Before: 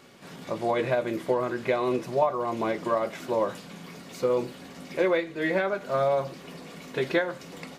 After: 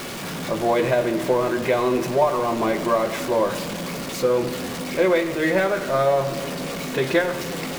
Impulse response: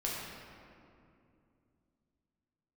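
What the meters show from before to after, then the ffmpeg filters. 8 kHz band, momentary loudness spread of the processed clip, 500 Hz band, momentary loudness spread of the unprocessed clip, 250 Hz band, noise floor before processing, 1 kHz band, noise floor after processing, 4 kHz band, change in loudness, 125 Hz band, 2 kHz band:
+14.5 dB, 8 LU, +5.5 dB, 17 LU, +7.0 dB, -46 dBFS, +5.5 dB, -31 dBFS, +10.0 dB, +5.5 dB, +8.0 dB, +6.0 dB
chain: -filter_complex "[0:a]aeval=exprs='val(0)+0.5*0.0282*sgn(val(0))':c=same,asplit=2[s0][s1];[1:a]atrim=start_sample=2205[s2];[s1][s2]afir=irnorm=-1:irlink=0,volume=0.251[s3];[s0][s3]amix=inputs=2:normalize=0,volume=1.26"

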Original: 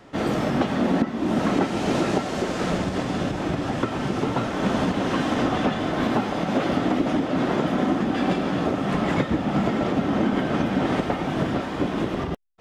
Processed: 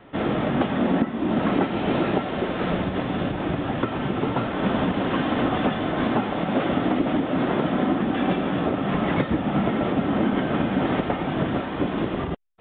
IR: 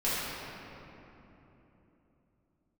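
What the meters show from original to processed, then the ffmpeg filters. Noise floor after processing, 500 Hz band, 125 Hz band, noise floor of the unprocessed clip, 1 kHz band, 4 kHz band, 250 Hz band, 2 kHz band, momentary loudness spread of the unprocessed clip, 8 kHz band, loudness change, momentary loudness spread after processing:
-30 dBFS, 0.0 dB, 0.0 dB, -30 dBFS, 0.0 dB, -1.0 dB, 0.0 dB, 0.0 dB, 3 LU, under -40 dB, 0.0 dB, 4 LU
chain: -af "aresample=8000,aresample=44100"

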